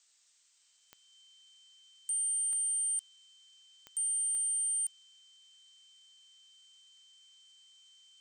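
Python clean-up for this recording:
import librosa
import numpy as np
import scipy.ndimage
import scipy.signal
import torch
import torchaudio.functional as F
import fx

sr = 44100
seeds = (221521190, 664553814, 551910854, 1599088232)

y = fx.fix_declick_ar(x, sr, threshold=10.0)
y = fx.notch(y, sr, hz=3100.0, q=30.0)
y = fx.noise_reduce(y, sr, print_start_s=0.04, print_end_s=0.54, reduce_db=14.0)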